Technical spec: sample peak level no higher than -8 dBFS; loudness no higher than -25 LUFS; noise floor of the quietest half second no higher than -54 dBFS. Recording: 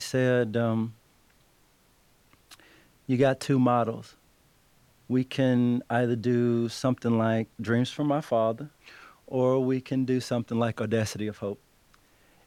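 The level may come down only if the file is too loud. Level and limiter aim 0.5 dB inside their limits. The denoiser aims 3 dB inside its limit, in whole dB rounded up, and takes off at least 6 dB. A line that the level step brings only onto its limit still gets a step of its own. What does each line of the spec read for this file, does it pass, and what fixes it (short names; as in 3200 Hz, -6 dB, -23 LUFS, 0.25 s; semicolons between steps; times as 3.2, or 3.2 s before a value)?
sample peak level -11.5 dBFS: OK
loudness -27.0 LUFS: OK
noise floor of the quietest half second -63 dBFS: OK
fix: none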